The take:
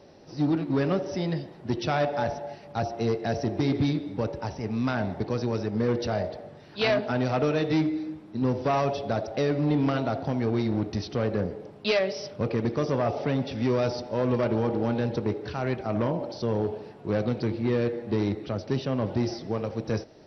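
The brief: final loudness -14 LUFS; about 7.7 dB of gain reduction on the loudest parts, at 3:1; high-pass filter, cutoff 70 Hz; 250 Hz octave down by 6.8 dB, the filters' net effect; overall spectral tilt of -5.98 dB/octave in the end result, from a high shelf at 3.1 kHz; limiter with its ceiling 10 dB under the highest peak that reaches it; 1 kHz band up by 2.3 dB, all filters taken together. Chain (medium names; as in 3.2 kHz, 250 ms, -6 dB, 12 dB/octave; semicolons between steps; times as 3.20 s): high-pass 70 Hz; peaking EQ 250 Hz -9 dB; peaking EQ 1 kHz +5 dB; treble shelf 3.1 kHz -8.5 dB; compression 3:1, threshold -31 dBFS; trim +25 dB; peak limiter -4.5 dBFS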